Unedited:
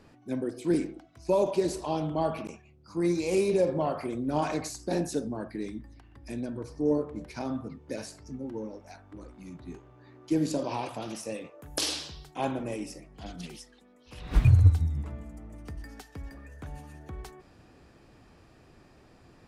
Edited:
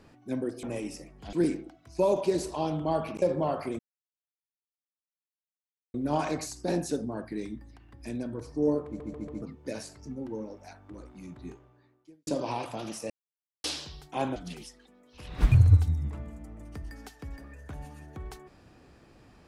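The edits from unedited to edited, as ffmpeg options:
-filter_complex "[0:a]asplit=13[a][b][c][d][e][f][g][h][i][j][k][l][m];[a]atrim=end=0.632[n];[b]atrim=start=12.588:end=13.292[o];[c]atrim=start=0.628:end=2.522[p];[d]atrim=start=3.598:end=4.17,asetpts=PTS-STARTPTS,afade=t=out:st=0.568:d=0.004:c=hsin,apad=pad_dur=2.15[q];[e]atrim=start=4.17:end=7.232,asetpts=PTS-STARTPTS,afade=t=in:d=0.004:c=hsin[r];[f]atrim=start=7.088:end=7.232[s];[g]atrim=start=7.088:end=7.232[t];[h]atrim=start=7.088:end=7.232[u];[i]atrim=start=7.648:end=10.5,asetpts=PTS-STARTPTS,afade=t=out:st=2.072:d=0.78:c=qua[v];[j]atrim=start=10.5:end=11.33,asetpts=PTS-STARTPTS,afade=t=in:d=0.004:c=hsin,afade=t=out:st=0.826:d=0.004:c=hsin[w];[k]atrim=start=11.33:end=11.87,asetpts=PTS-STARTPTS,volume=0[x];[l]atrim=start=11.87:end=12.592,asetpts=PTS-STARTPTS,afade=t=in:d=0.004:c=hsin[y];[m]atrim=start=13.288[z];[n][o]acrossfade=d=0.004:c1=hsin:c2=hsin[aa];[aa][p]acrossfade=d=0.004:c1=hsin:c2=hsin[ab];[q][r]concat=n=2:v=0:a=1[ac];[ab][ac]acrossfade=d=0.004:c1=hsin:c2=hsin[ad];[ad][s]acrossfade=d=0.004:c1=hsin:c2=hsin[ae];[ae][t]acrossfade=d=0.004:c1=hsin:c2=hsin[af];[af][u]acrossfade=d=0.004:c1=hsin:c2=hsin[ag];[v][w][x][y]concat=n=4:v=0:a=1[ah];[ag][ah]acrossfade=d=0.004:c1=hsin:c2=hsin[ai];[ai][z]acrossfade=d=0.004:c1=hsin:c2=hsin"

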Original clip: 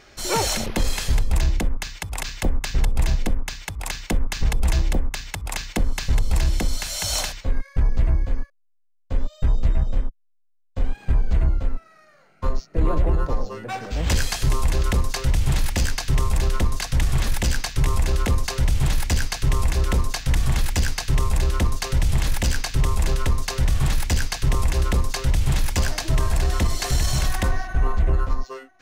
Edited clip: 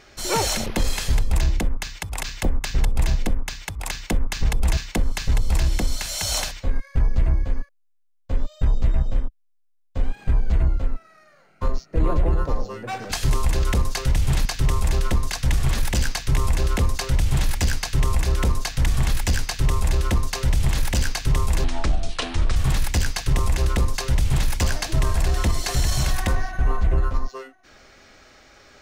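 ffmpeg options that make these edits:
-filter_complex "[0:a]asplit=6[a][b][c][d][e][f];[a]atrim=end=4.772[g];[b]atrim=start=5.578:end=13.932[h];[c]atrim=start=14.308:end=15.642[i];[d]atrim=start=15.938:end=23.134[j];[e]atrim=start=23.13:end=23.72,asetpts=PTS-STARTPTS,asetrate=28224,aresample=44100[k];[f]atrim=start=23.716[l];[g][h]acrossfade=d=0.004:c1=hsin:c2=hsin[m];[m][i]acrossfade=d=0.004:c1=hsin:c2=hsin[n];[n][j]acrossfade=d=0.004:c1=hsin:c2=hsin[o];[o][k]acrossfade=d=0.004:c1=hsin:c2=hsin[p];[p][l]acrossfade=d=0.004:c1=hsin:c2=hsin"

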